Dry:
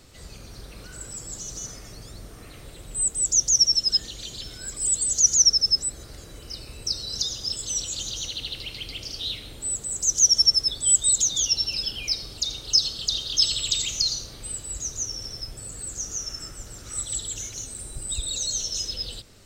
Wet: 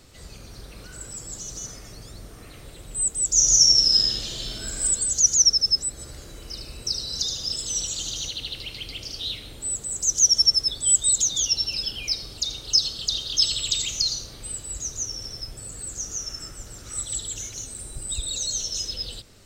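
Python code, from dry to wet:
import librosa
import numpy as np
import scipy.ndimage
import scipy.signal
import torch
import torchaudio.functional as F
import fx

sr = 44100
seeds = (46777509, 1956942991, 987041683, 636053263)

y = fx.reverb_throw(x, sr, start_s=3.3, length_s=1.53, rt60_s=1.6, drr_db=-4.0)
y = fx.echo_feedback(y, sr, ms=74, feedback_pct=37, wet_db=-6, at=(5.97, 8.29), fade=0.02)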